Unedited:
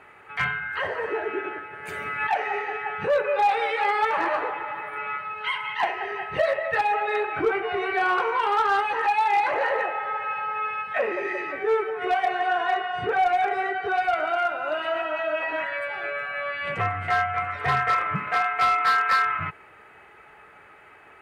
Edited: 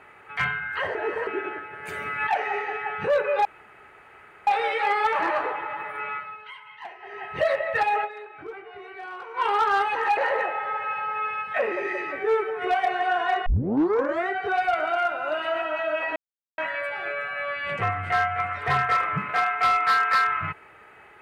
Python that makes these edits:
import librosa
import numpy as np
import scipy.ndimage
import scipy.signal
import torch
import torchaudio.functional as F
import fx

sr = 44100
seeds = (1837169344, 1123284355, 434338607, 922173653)

y = fx.edit(x, sr, fx.reverse_span(start_s=0.95, length_s=0.32),
    fx.insert_room_tone(at_s=3.45, length_s=1.02),
    fx.fade_down_up(start_s=5.04, length_s=1.39, db=-15.0, fade_s=0.45),
    fx.fade_down_up(start_s=7.02, length_s=1.36, db=-15.0, fade_s=0.26, curve='exp'),
    fx.cut(start_s=9.15, length_s=0.42),
    fx.tape_start(start_s=12.86, length_s=0.82),
    fx.insert_silence(at_s=15.56, length_s=0.42), tone=tone)